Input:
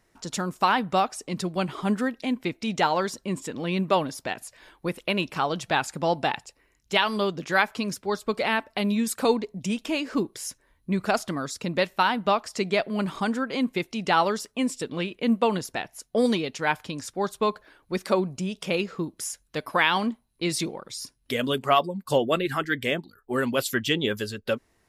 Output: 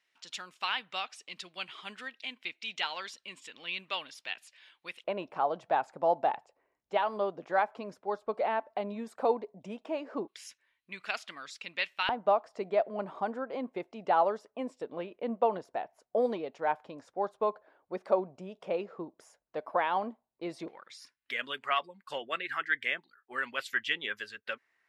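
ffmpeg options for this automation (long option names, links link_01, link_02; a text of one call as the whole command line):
ffmpeg -i in.wav -af "asetnsamples=nb_out_samples=441:pad=0,asendcmd='5.04 bandpass f 690;10.28 bandpass f 2600;12.09 bandpass f 670;20.68 bandpass f 1900',bandpass=frequency=2900:width_type=q:width=2:csg=0" out.wav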